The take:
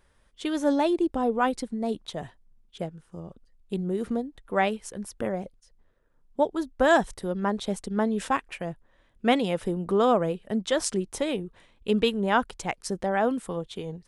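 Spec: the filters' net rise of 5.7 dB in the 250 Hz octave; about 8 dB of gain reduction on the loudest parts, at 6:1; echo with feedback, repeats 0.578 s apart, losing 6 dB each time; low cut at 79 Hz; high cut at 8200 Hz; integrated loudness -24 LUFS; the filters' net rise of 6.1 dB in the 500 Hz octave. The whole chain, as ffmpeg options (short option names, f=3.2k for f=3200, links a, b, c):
-af "highpass=79,lowpass=8.2k,equalizer=f=250:t=o:g=5.5,equalizer=f=500:t=o:g=6,acompressor=threshold=-20dB:ratio=6,aecho=1:1:578|1156|1734|2312|2890|3468:0.501|0.251|0.125|0.0626|0.0313|0.0157,volume=2.5dB"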